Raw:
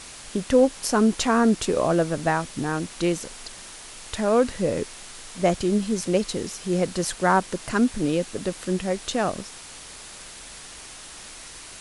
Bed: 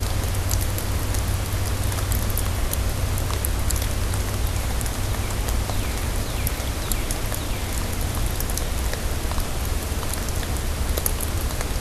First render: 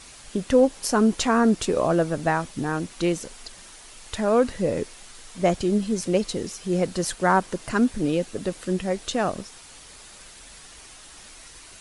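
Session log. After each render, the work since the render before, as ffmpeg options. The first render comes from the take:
ffmpeg -i in.wav -af "afftdn=noise_reduction=6:noise_floor=-42" out.wav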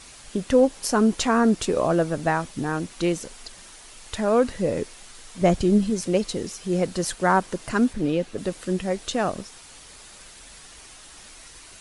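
ffmpeg -i in.wav -filter_complex "[0:a]asettb=1/sr,asplit=3[link_01][link_02][link_03];[link_01]atrim=end=5.414[link_04];[link_02]atrim=start=5.41:end=5.9,asetpts=PTS-STARTPTS,afade=type=in:duration=0.004:curve=qsin,afade=type=out:start_time=0.486:duration=0.004:curve=qsin,lowshelf=frequency=220:gain=8[link_05];[link_03]atrim=start=5.896[link_06];[link_04][link_05]acrossfade=duration=0.004:curve1=hsin:curve2=qsin[link_07];[link_07][link_06]acrossfade=duration=0.004:curve1=qsin:curve2=hsin,asettb=1/sr,asplit=3[link_08][link_09][link_10];[link_08]atrim=end=7.934[link_11];[link_09]atrim=start=7.93:end=8.38,asetpts=PTS-STARTPTS,afade=type=in:duration=0.004:curve=qsin,afade=type=out:start_time=0.446:duration=0.004:curve=qsin,acrossover=split=4600[link_12][link_13];[link_13]acompressor=threshold=-53dB:ratio=4:attack=1:release=60[link_14];[link_12][link_14]amix=inputs=2:normalize=0[link_15];[link_10]atrim=start=8.376[link_16];[link_11][link_15]acrossfade=duration=0.004:curve1=hsin:curve2=qsin[link_17];[link_17][link_16]acrossfade=duration=0.004:curve1=qsin:curve2=hsin" out.wav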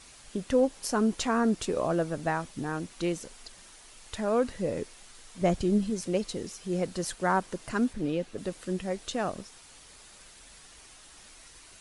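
ffmpeg -i in.wav -af "volume=-6.5dB" out.wav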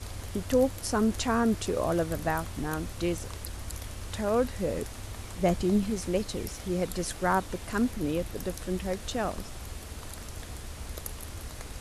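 ffmpeg -i in.wav -i bed.wav -filter_complex "[1:a]volume=-15.5dB[link_01];[0:a][link_01]amix=inputs=2:normalize=0" out.wav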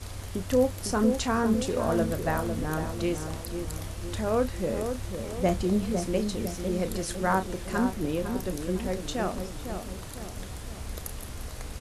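ffmpeg -i in.wav -filter_complex "[0:a]asplit=2[link_01][link_02];[link_02]adelay=32,volume=-11dB[link_03];[link_01][link_03]amix=inputs=2:normalize=0,asplit=2[link_04][link_05];[link_05]adelay=504,lowpass=frequency=1000:poles=1,volume=-6dB,asplit=2[link_06][link_07];[link_07]adelay=504,lowpass=frequency=1000:poles=1,volume=0.53,asplit=2[link_08][link_09];[link_09]adelay=504,lowpass=frequency=1000:poles=1,volume=0.53,asplit=2[link_10][link_11];[link_11]adelay=504,lowpass=frequency=1000:poles=1,volume=0.53,asplit=2[link_12][link_13];[link_13]adelay=504,lowpass=frequency=1000:poles=1,volume=0.53,asplit=2[link_14][link_15];[link_15]adelay=504,lowpass=frequency=1000:poles=1,volume=0.53,asplit=2[link_16][link_17];[link_17]adelay=504,lowpass=frequency=1000:poles=1,volume=0.53[link_18];[link_04][link_06][link_08][link_10][link_12][link_14][link_16][link_18]amix=inputs=8:normalize=0" out.wav

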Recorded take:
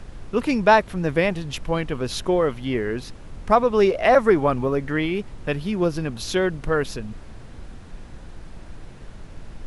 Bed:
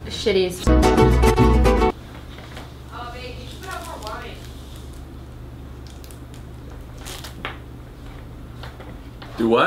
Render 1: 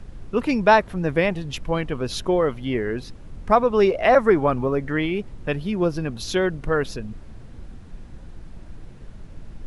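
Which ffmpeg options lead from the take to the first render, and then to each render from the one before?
ffmpeg -i in.wav -af "afftdn=noise_reduction=6:noise_floor=-41" out.wav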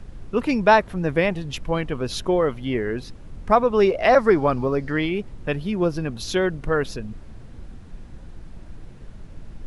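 ffmpeg -i in.wav -filter_complex "[0:a]asettb=1/sr,asplit=3[link_01][link_02][link_03];[link_01]atrim=end=4.004[link_04];[link_02]atrim=start=4:end=5.09,asetpts=PTS-STARTPTS,afade=type=in:duration=0.004:curve=qsin,afade=type=out:start_time=1.086:duration=0.004:curve=qsin,equalizer=frequency=4800:width_type=o:width=0.44:gain=10.5[link_05];[link_03]atrim=start=5.086[link_06];[link_04][link_05]acrossfade=duration=0.004:curve1=hsin:curve2=qsin[link_07];[link_07][link_06]acrossfade=duration=0.004:curve1=qsin:curve2=hsin" out.wav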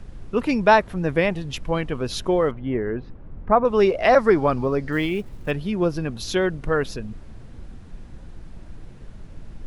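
ffmpeg -i in.wav -filter_complex "[0:a]asettb=1/sr,asplit=3[link_01][link_02][link_03];[link_01]atrim=end=2.514[link_04];[link_02]atrim=start=2.51:end=3.65,asetpts=PTS-STARTPTS,afade=type=in:duration=0.004:curve=qsin,afade=type=out:start_time=1.136:duration=0.004:curve=qsin,lowpass=1500[link_05];[link_03]atrim=start=3.646[link_06];[link_04][link_05]acrossfade=duration=0.004:curve1=hsin:curve2=qsin[link_07];[link_07][link_06]acrossfade=duration=0.004:curve1=qsin:curve2=hsin,asettb=1/sr,asplit=3[link_08][link_09][link_10];[link_08]atrim=end=4.924[link_11];[link_09]atrim=start=4.92:end=5.51,asetpts=PTS-STARTPTS,afade=type=in:duration=0.004:curve=qsin,afade=type=out:start_time=0.586:duration=0.004:curve=qsin,acrusher=bits=8:mode=log:mix=0:aa=0.000001[link_12];[link_10]atrim=start=5.506[link_13];[link_11][link_12]acrossfade=duration=0.004:curve1=hsin:curve2=qsin[link_14];[link_14][link_13]acrossfade=duration=0.004:curve1=qsin:curve2=hsin" out.wav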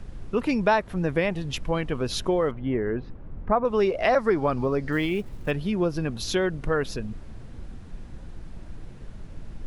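ffmpeg -i in.wav -af "acompressor=threshold=-22dB:ratio=2" out.wav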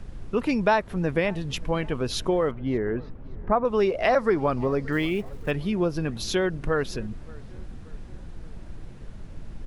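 ffmpeg -i in.wav -filter_complex "[0:a]asplit=2[link_01][link_02];[link_02]adelay=576,lowpass=frequency=2200:poles=1,volume=-23.5dB,asplit=2[link_03][link_04];[link_04]adelay=576,lowpass=frequency=2200:poles=1,volume=0.54,asplit=2[link_05][link_06];[link_06]adelay=576,lowpass=frequency=2200:poles=1,volume=0.54,asplit=2[link_07][link_08];[link_08]adelay=576,lowpass=frequency=2200:poles=1,volume=0.54[link_09];[link_01][link_03][link_05][link_07][link_09]amix=inputs=5:normalize=0" out.wav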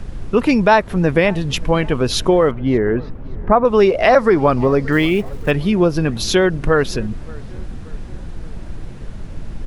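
ffmpeg -i in.wav -af "volume=10dB,alimiter=limit=-2dB:level=0:latency=1" out.wav

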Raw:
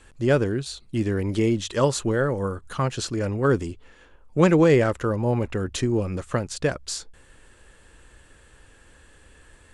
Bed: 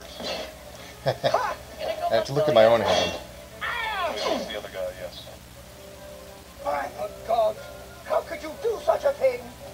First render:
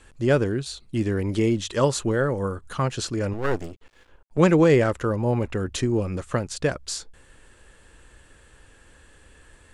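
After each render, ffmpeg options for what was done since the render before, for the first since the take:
ffmpeg -i in.wav -filter_complex "[0:a]asettb=1/sr,asplit=3[link_01][link_02][link_03];[link_01]atrim=end=3.334[link_04];[link_02]atrim=start=3.33:end=4.38,asetpts=PTS-STARTPTS,afade=type=in:duration=0.004:curve=qsin,afade=type=out:start_time=1.046:duration=0.004:curve=qsin,aeval=exprs='max(val(0),0)':channel_layout=same[link_05];[link_03]atrim=start=4.376[link_06];[link_04][link_05]acrossfade=duration=0.004:curve1=hsin:curve2=qsin[link_07];[link_07][link_06]acrossfade=duration=0.004:curve1=qsin:curve2=hsin" out.wav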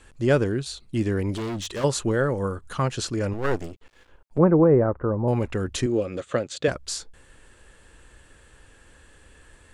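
ffmpeg -i in.wav -filter_complex "[0:a]asplit=3[link_01][link_02][link_03];[link_01]afade=type=out:start_time=1.35:duration=0.02[link_04];[link_02]asoftclip=type=hard:threshold=-27.5dB,afade=type=in:start_time=1.35:duration=0.02,afade=type=out:start_time=1.83:duration=0.02[link_05];[link_03]afade=type=in:start_time=1.83:duration=0.02[link_06];[link_04][link_05][link_06]amix=inputs=3:normalize=0,asettb=1/sr,asplit=3[link_07][link_08][link_09];[link_07]atrim=end=4.384[link_10];[link_08]atrim=start=4.38:end=5.28,asetpts=PTS-STARTPTS,afade=type=in:duration=0.004:curve=qsin,afade=type=out:start_time=0.896:duration=0.004:curve=qsin,lowpass=frequency=1200:width=0.5412,lowpass=frequency=1200:width=1.3066[link_11];[link_09]atrim=start=5.276[link_12];[link_10][link_11]acrossfade=duration=0.004:curve1=hsin:curve2=qsin[link_13];[link_13][link_12]acrossfade=duration=0.004:curve1=qsin:curve2=hsin,asettb=1/sr,asplit=3[link_14][link_15][link_16];[link_14]atrim=end=5.864[link_17];[link_15]atrim=start=5.86:end=6.68,asetpts=PTS-STARTPTS,afade=type=in:duration=0.004:curve=qsin,afade=type=out:start_time=0.816:duration=0.004:curve=qsin,highpass=160,equalizer=frequency=190:width_type=q:width=4:gain=-5,equalizer=frequency=540:width_type=q:width=4:gain=6,equalizer=frequency=940:width_type=q:width=4:gain=-9,equalizer=frequency=3500:width_type=q:width=4:gain=7,equalizer=frequency=5400:width_type=q:width=4:gain=-7,lowpass=frequency=7700:width=0.5412,lowpass=frequency=7700:width=1.3066[link_18];[link_16]atrim=start=6.676[link_19];[link_17][link_18]acrossfade=duration=0.004:curve1=hsin:curve2=qsin[link_20];[link_20][link_19]acrossfade=duration=0.004:curve1=qsin:curve2=hsin" out.wav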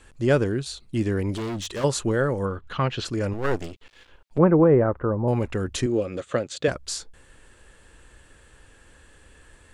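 ffmpeg -i in.wav -filter_complex "[0:a]asplit=3[link_01][link_02][link_03];[link_01]afade=type=out:start_time=2.45:duration=0.02[link_04];[link_02]lowpass=frequency=3200:width_type=q:width=1.7,afade=type=in:start_time=2.45:duration=0.02,afade=type=out:start_time=3.04:duration=0.02[link_05];[link_03]afade=type=in:start_time=3.04:duration=0.02[link_06];[link_04][link_05][link_06]amix=inputs=3:normalize=0,asettb=1/sr,asplit=3[link_07][link_08][link_09];[link_07]atrim=end=3.624[link_10];[link_08]atrim=start=3.62:end=5.14,asetpts=PTS-STARTPTS,afade=type=in:duration=0.004:curve=qsin,afade=type=out:start_time=1.516:duration=0.004:curve=qsin,equalizer=frequency=3400:width=0.74:gain=8.5[link_11];[link_09]atrim=start=5.136[link_12];[link_10][link_11]acrossfade=duration=0.004:curve1=hsin:curve2=qsin[link_13];[link_13][link_12]acrossfade=duration=0.004:curve1=qsin:curve2=hsin" out.wav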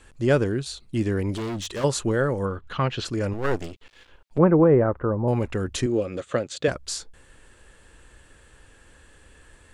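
ffmpeg -i in.wav -af anull out.wav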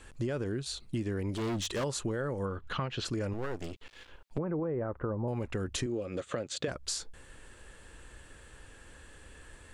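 ffmpeg -i in.wav -af "alimiter=limit=-15.5dB:level=0:latency=1,acompressor=threshold=-31dB:ratio=6" out.wav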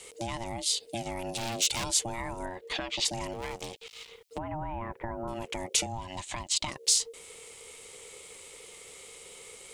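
ffmpeg -i in.wav -af "aeval=exprs='val(0)*sin(2*PI*460*n/s)':channel_layout=same,aexciter=amount=2.7:drive=8.4:freq=2200" out.wav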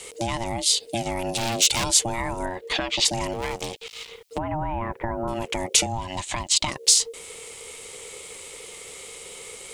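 ffmpeg -i in.wav -af "volume=8dB,alimiter=limit=-2dB:level=0:latency=1" out.wav

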